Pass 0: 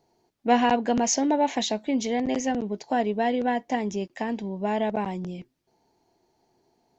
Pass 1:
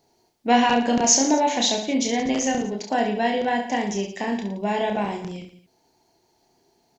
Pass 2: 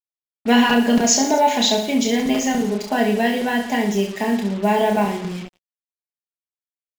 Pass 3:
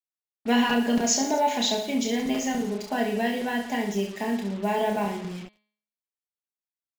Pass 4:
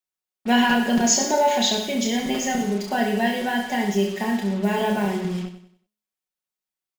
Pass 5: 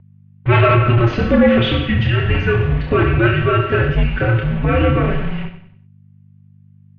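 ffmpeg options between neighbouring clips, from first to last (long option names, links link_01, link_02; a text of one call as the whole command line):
ffmpeg -i in.wav -filter_complex "[0:a]highshelf=frequency=2300:gain=8,asplit=2[link_01][link_02];[link_02]aecho=0:1:30|67.5|114.4|173|246.2:0.631|0.398|0.251|0.158|0.1[link_03];[link_01][link_03]amix=inputs=2:normalize=0" out.wav
ffmpeg -i in.wav -af "equalizer=frequency=6000:width=5:gain=-6.5,aecho=1:1:4.8:0.66,acrusher=bits=5:mix=0:aa=0.5,volume=2.5dB" out.wav
ffmpeg -i in.wav -af "bandreject=frequency=210.3:width_type=h:width=4,bandreject=frequency=420.6:width_type=h:width=4,bandreject=frequency=630.9:width_type=h:width=4,bandreject=frequency=841.2:width_type=h:width=4,bandreject=frequency=1051.5:width_type=h:width=4,bandreject=frequency=1261.8:width_type=h:width=4,bandreject=frequency=1472.1:width_type=h:width=4,bandreject=frequency=1682.4:width_type=h:width=4,bandreject=frequency=1892.7:width_type=h:width=4,bandreject=frequency=2103:width_type=h:width=4,bandreject=frequency=2313.3:width_type=h:width=4,bandreject=frequency=2523.6:width_type=h:width=4,bandreject=frequency=2733.9:width_type=h:width=4,bandreject=frequency=2944.2:width_type=h:width=4,bandreject=frequency=3154.5:width_type=h:width=4,bandreject=frequency=3364.8:width_type=h:width=4,bandreject=frequency=3575.1:width_type=h:width=4,bandreject=frequency=3785.4:width_type=h:width=4,bandreject=frequency=3995.7:width_type=h:width=4,bandreject=frequency=4206:width_type=h:width=4,bandreject=frequency=4416.3:width_type=h:width=4,bandreject=frequency=4626.6:width_type=h:width=4,bandreject=frequency=4836.9:width_type=h:width=4,volume=-7dB" out.wav
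ffmpeg -i in.wav -filter_complex "[0:a]aecho=1:1:5.4:0.58,asplit=2[link_01][link_02];[link_02]aecho=0:1:95|190|285|380:0.266|0.0984|0.0364|0.0135[link_03];[link_01][link_03]amix=inputs=2:normalize=0,volume=3dB" out.wav
ffmpeg -i in.wav -af "aeval=exprs='0.562*sin(PI/2*2.82*val(0)/0.562)':channel_layout=same,aeval=exprs='val(0)+0.0355*(sin(2*PI*50*n/s)+sin(2*PI*2*50*n/s)/2+sin(2*PI*3*50*n/s)/3+sin(2*PI*4*50*n/s)/4+sin(2*PI*5*50*n/s)/5)':channel_layout=same,highpass=frequency=220:width_type=q:width=0.5412,highpass=frequency=220:width_type=q:width=1.307,lowpass=frequency=3200:width_type=q:width=0.5176,lowpass=frequency=3200:width_type=q:width=0.7071,lowpass=frequency=3200:width_type=q:width=1.932,afreqshift=-350,volume=-2dB" out.wav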